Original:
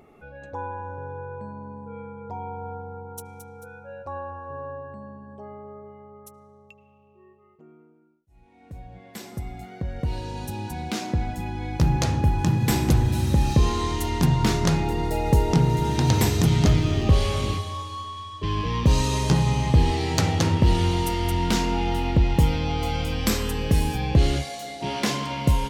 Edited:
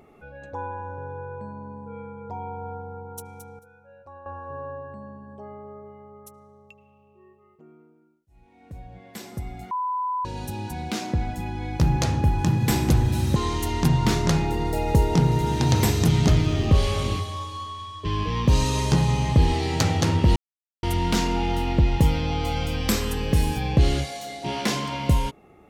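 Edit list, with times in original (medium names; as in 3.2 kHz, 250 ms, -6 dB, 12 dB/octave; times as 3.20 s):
3.59–4.26 s: gain -11 dB
9.71–10.25 s: bleep 1 kHz -23.5 dBFS
13.36–13.74 s: delete
20.74–21.21 s: mute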